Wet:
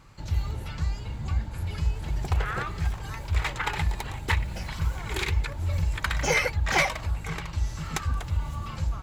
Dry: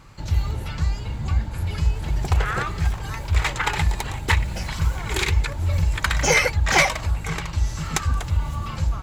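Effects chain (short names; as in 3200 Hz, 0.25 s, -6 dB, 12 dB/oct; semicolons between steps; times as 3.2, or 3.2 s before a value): dynamic EQ 7200 Hz, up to -4 dB, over -43 dBFS, Q 1.1; gain -5.5 dB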